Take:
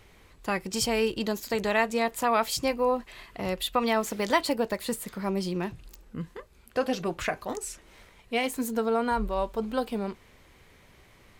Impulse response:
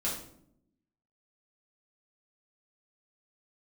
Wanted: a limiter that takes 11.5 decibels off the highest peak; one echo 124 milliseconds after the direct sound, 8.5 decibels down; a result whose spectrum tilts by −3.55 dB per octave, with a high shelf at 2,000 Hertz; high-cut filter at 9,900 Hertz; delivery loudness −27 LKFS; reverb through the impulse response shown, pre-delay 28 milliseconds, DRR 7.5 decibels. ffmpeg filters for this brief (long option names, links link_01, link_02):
-filter_complex "[0:a]lowpass=9900,highshelf=frequency=2000:gain=6.5,alimiter=limit=-21dB:level=0:latency=1,aecho=1:1:124:0.376,asplit=2[link_01][link_02];[1:a]atrim=start_sample=2205,adelay=28[link_03];[link_02][link_03]afir=irnorm=-1:irlink=0,volume=-12.5dB[link_04];[link_01][link_04]amix=inputs=2:normalize=0,volume=3.5dB"